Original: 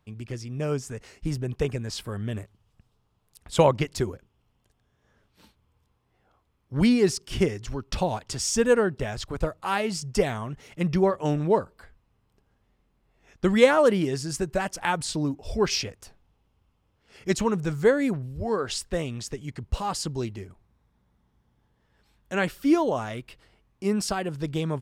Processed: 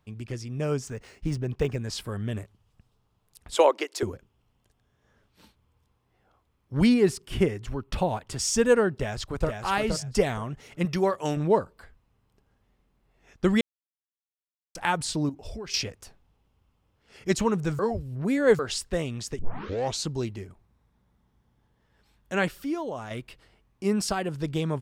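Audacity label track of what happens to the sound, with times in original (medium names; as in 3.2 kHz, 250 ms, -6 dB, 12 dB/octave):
0.870000	1.780000	decimation joined by straight lines rate divided by 3×
3.550000	4.030000	steep high-pass 320 Hz
6.940000	8.390000	peaking EQ 5.6 kHz -9 dB 0.98 oct
8.940000	9.490000	echo throw 470 ms, feedback 20%, level -5 dB
10.850000	11.370000	tilt EQ +2 dB/octave
13.610000	14.750000	mute
15.290000	15.740000	compression 12:1, threshold -33 dBFS
17.790000	18.590000	reverse
19.390000	19.390000	tape start 0.69 s
22.480000	23.110000	compression 1.5:1, threshold -44 dBFS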